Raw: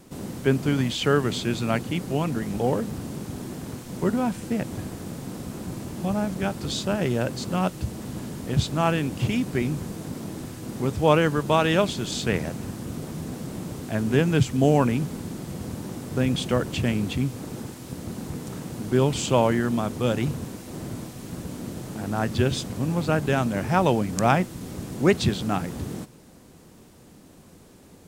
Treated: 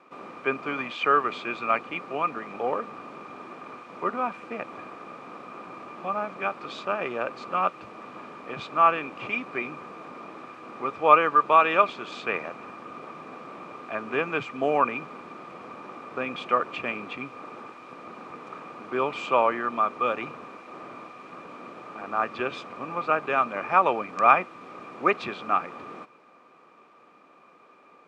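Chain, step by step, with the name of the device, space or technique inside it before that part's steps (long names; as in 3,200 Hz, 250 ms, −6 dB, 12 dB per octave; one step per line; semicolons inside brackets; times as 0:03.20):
tin-can telephone (band-pass filter 520–2,100 Hz; hollow resonant body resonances 1,200/2,400 Hz, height 18 dB, ringing for 40 ms)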